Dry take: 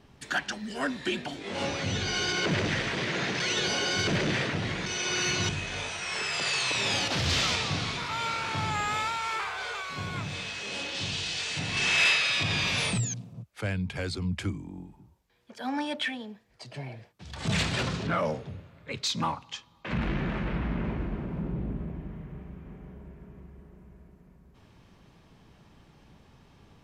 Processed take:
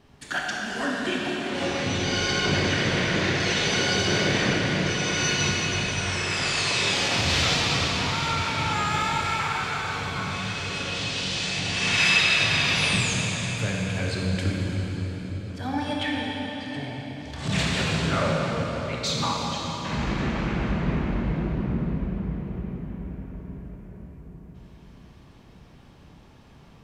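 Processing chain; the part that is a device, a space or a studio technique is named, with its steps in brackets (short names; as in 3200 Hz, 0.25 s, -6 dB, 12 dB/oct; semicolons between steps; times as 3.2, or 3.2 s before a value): 16.03–16.66 air absorption 110 m; cathedral (reverb RT60 5.0 s, pre-delay 18 ms, DRR -3 dB)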